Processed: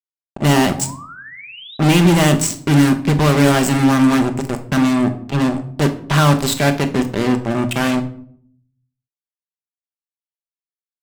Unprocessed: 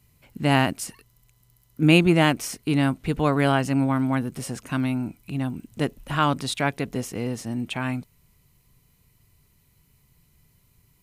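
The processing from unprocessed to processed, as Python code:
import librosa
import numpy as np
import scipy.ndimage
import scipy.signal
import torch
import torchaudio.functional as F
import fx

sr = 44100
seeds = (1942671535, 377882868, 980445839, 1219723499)

y = fx.lowpass_res(x, sr, hz=7800.0, q=15.0)
y = fx.high_shelf(y, sr, hz=4600.0, db=-9.5)
y = fx.env_lowpass(y, sr, base_hz=2700.0, full_db=-16.0)
y = fx.fuzz(y, sr, gain_db=31.0, gate_db=-29.0)
y = fx.spec_paint(y, sr, seeds[0], shape='rise', start_s=0.64, length_s=1.13, low_hz=640.0, high_hz=4000.0, level_db=-39.0)
y = fx.room_shoebox(y, sr, seeds[1], volume_m3=790.0, walls='furnished', distance_m=1.2)
y = y * librosa.db_to_amplitude(2.0)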